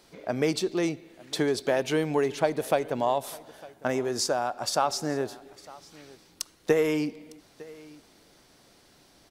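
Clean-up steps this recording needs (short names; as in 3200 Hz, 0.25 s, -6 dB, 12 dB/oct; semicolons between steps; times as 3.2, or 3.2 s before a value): inverse comb 0.905 s -21.5 dB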